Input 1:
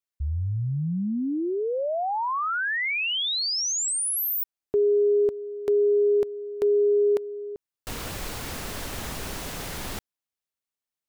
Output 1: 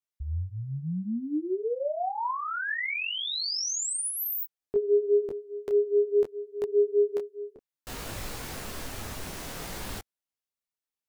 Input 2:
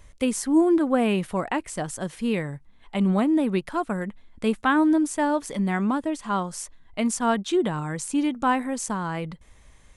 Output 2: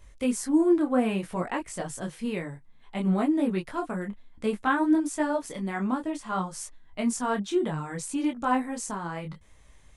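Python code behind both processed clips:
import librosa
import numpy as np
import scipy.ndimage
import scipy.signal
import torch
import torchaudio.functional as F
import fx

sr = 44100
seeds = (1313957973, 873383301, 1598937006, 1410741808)

y = fx.dynamic_eq(x, sr, hz=3200.0, q=2.0, threshold_db=-42.0, ratio=4.0, max_db=-3)
y = fx.detune_double(y, sr, cents=21)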